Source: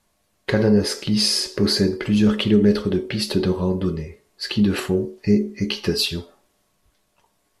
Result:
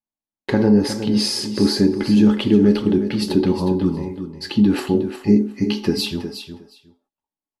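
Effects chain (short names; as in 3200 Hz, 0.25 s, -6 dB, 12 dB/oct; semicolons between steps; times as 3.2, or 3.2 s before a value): gate -44 dBFS, range -31 dB; small resonant body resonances 270/830 Hz, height 13 dB, ringing for 35 ms; on a send: feedback echo 0.362 s, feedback 16%, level -10 dB; on the sum: gain -3 dB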